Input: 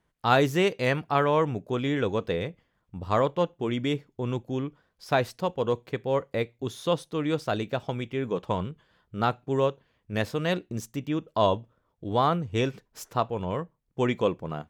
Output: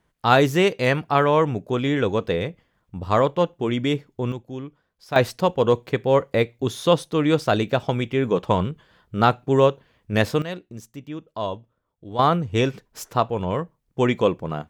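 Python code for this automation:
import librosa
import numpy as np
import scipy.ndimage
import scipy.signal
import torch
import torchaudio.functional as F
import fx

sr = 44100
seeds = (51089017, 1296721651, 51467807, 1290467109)

y = fx.gain(x, sr, db=fx.steps((0.0, 5.0), (4.32, -3.0), (5.16, 8.0), (10.42, -5.0), (12.19, 5.5)))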